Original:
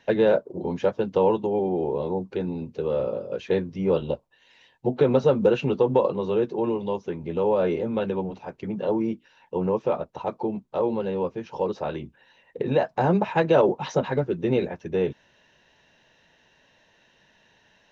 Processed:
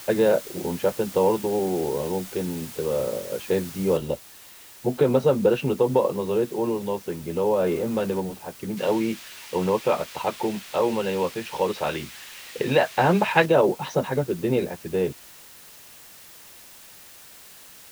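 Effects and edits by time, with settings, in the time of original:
3.97 noise floor step -41 dB -47 dB
7.66–8.2 zero-crossing step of -37 dBFS
8.77–13.46 bell 2600 Hz +11 dB 2.4 oct

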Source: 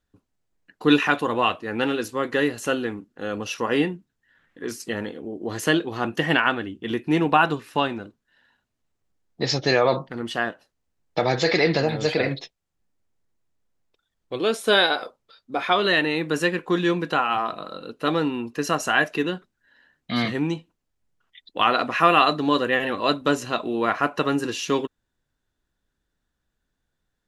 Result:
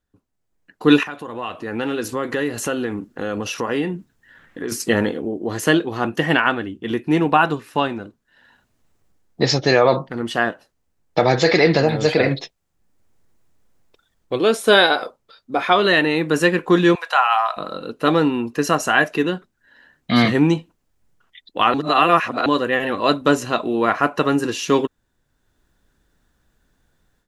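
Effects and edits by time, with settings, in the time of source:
1.03–4.72 compressor 2.5:1, threshold -39 dBFS
16.95–17.57 steep high-pass 660 Hz
21.74–22.46 reverse
whole clip: bell 3500 Hz -3 dB 1.7 oct; AGC gain up to 15 dB; gain -1 dB

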